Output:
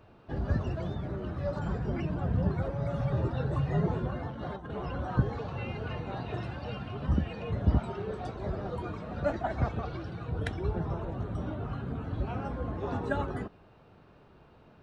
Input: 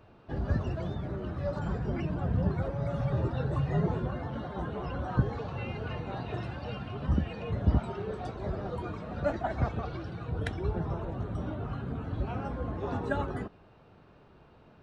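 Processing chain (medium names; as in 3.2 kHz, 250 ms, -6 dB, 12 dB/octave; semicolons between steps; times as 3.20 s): 4.30–4.71 s: compressor with a negative ratio -38 dBFS, ratio -0.5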